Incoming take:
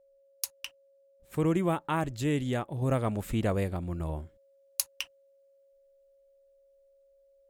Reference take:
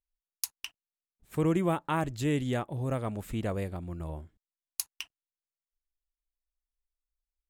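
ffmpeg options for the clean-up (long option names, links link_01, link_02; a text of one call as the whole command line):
ffmpeg -i in.wav -af "bandreject=frequency=550:width=30,asetnsamples=nb_out_samples=441:pad=0,asendcmd='2.82 volume volume -4dB',volume=0dB" out.wav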